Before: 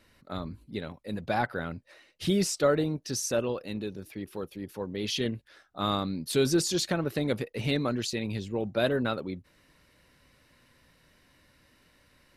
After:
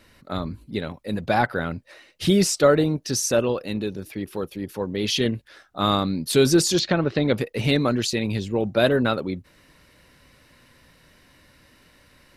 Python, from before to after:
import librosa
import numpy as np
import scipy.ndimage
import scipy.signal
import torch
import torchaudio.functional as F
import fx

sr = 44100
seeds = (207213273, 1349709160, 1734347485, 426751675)

y = fx.lowpass(x, sr, hz=5000.0, slope=24, at=(6.79, 7.38))
y = y * librosa.db_to_amplitude(7.5)